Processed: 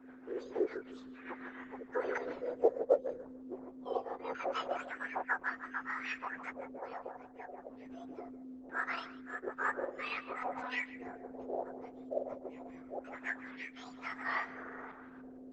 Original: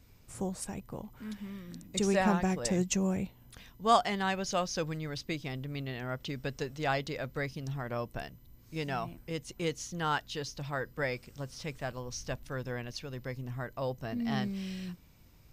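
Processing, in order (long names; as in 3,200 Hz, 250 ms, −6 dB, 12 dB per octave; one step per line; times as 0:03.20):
frequency axis turned over on the octave scale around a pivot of 1,900 Hz
0:10.41–0:10.82: comb filter 4 ms, depth 71%
auto-filter low-pass square 0.23 Hz 600–1,700 Hz
in parallel at +0.5 dB: downward compressor 16 to 1, threshold −45 dBFS, peak gain reduction 25.5 dB
0:03.84–0:04.24: on the sum: Chebyshev high-pass with heavy ripple 220 Hz, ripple 3 dB
0:06.78–0:07.70: three-way crossover with the lows and the highs turned down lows −13 dB, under 360 Hz, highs −17 dB, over 6,200 Hz
on a send: tape delay 154 ms, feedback 28%, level −11 dB, low-pass 2,300 Hz
on the sum: rotating-speaker cabinet horn 6.7 Hz, later 1.1 Hz, at 0:07.37
parametric band 620 Hz −10 dB 0.22 octaves
level +3 dB
Opus 12 kbit/s 48,000 Hz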